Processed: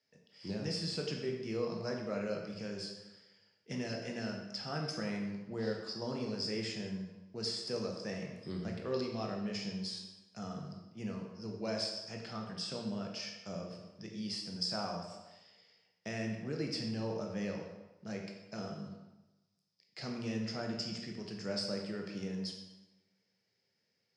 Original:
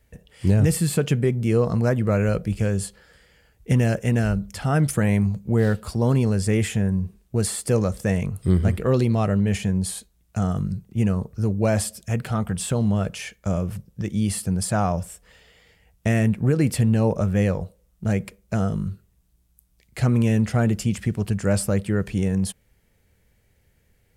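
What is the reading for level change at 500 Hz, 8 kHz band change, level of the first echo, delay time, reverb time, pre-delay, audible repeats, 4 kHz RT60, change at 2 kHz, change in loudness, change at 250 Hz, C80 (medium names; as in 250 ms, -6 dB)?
-14.0 dB, -19.0 dB, no echo, no echo, 1.0 s, 15 ms, no echo, 0.85 s, -13.5 dB, -16.5 dB, -16.5 dB, 6.0 dB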